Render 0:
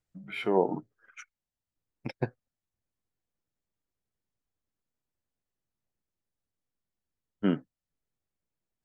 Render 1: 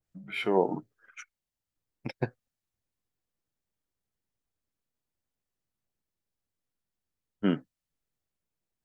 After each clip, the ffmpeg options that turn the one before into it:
ffmpeg -i in.wav -af "adynamicequalizer=threshold=0.00562:dfrequency=1600:dqfactor=0.7:tfrequency=1600:tqfactor=0.7:attack=5:release=100:ratio=0.375:range=2:mode=boostabove:tftype=highshelf" out.wav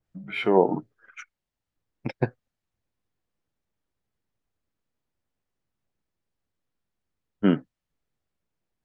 ffmpeg -i in.wav -af "lowpass=frequency=2600:poles=1,volume=6dB" out.wav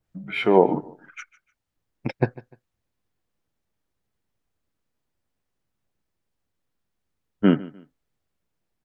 ffmpeg -i in.wav -af "aecho=1:1:149|298:0.1|0.029,volume=3dB" out.wav

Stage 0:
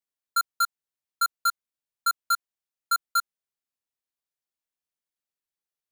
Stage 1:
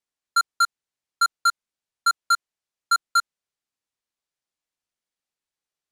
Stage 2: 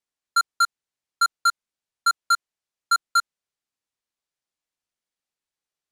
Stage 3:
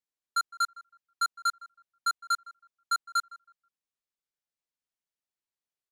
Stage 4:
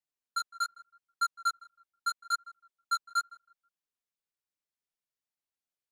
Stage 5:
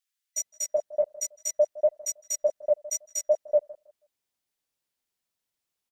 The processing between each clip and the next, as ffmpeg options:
ffmpeg -i in.wav -af "lowpass=8800,volume=4.5dB" out.wav
ffmpeg -i in.wav -af anull out.wav
ffmpeg -i in.wav -filter_complex "[0:a]asplit=2[link_01][link_02];[link_02]adelay=161,lowpass=frequency=1100:poles=1,volume=-15dB,asplit=2[link_03][link_04];[link_04]adelay=161,lowpass=frequency=1100:poles=1,volume=0.32,asplit=2[link_05][link_06];[link_06]adelay=161,lowpass=frequency=1100:poles=1,volume=0.32[link_07];[link_01][link_03][link_05][link_07]amix=inputs=4:normalize=0,volume=-8dB" out.wav
ffmpeg -i in.wav -af "flanger=delay=5.6:depth=6.6:regen=1:speed=0.8:shape=triangular" out.wav
ffmpeg -i in.wav -filter_complex "[0:a]afftfilt=real='real(if(between(b,1,1012),(2*floor((b-1)/92)+1)*92-b,b),0)':imag='imag(if(between(b,1,1012),(2*floor((b-1)/92)+1)*92-b,b),0)*if(between(b,1,1012),-1,1)':win_size=2048:overlap=0.75,acrossover=split=1400[link_01][link_02];[link_01]adelay=380[link_03];[link_03][link_02]amix=inputs=2:normalize=0,volume=8.5dB" out.wav

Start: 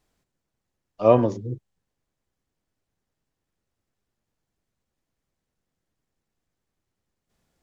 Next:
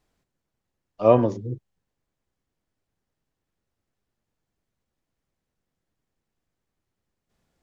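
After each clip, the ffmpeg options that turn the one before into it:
ffmpeg -i in.wav -af "highshelf=frequency=5300:gain=-4.5" out.wav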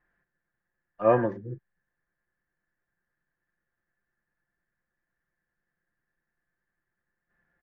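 ffmpeg -i in.wav -af "lowpass=frequency=1700:width_type=q:width=11,aecho=1:1:5.7:0.46,volume=-6.5dB" out.wav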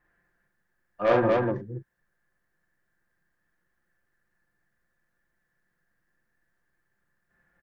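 ffmpeg -i in.wav -filter_complex "[0:a]asoftclip=type=tanh:threshold=-20.5dB,asplit=2[link_01][link_02];[link_02]aecho=0:1:43.73|242:0.708|0.794[link_03];[link_01][link_03]amix=inputs=2:normalize=0,volume=3dB" out.wav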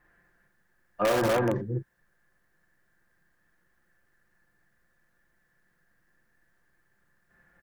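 ffmpeg -i in.wav -filter_complex "[0:a]asplit=2[link_01][link_02];[link_02]aeval=exprs='(mod(8.41*val(0)+1,2)-1)/8.41':channel_layout=same,volume=-6.5dB[link_03];[link_01][link_03]amix=inputs=2:normalize=0,acompressor=threshold=-24dB:ratio=10,volume=2.5dB" out.wav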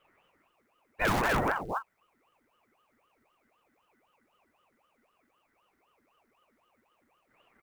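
ffmpeg -i in.wav -af "acrusher=bits=7:mode=log:mix=0:aa=0.000001,aeval=exprs='val(0)*sin(2*PI*740*n/s+740*0.7/3.9*sin(2*PI*3.9*n/s))':channel_layout=same" out.wav

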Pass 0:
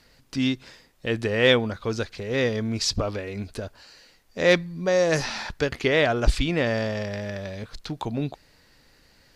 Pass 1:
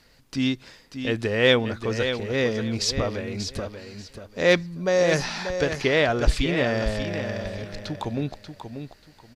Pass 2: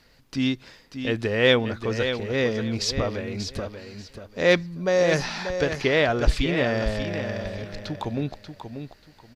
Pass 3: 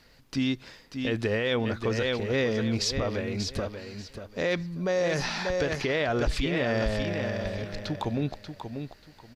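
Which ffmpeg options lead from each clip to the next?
ffmpeg -i in.wav -af "aecho=1:1:587|1174|1761:0.376|0.0827|0.0182" out.wav
ffmpeg -i in.wav -af "equalizer=frequency=8800:width_type=o:width=0.98:gain=-4.5" out.wav
ffmpeg -i in.wav -af "alimiter=limit=-18dB:level=0:latency=1:release=64" out.wav

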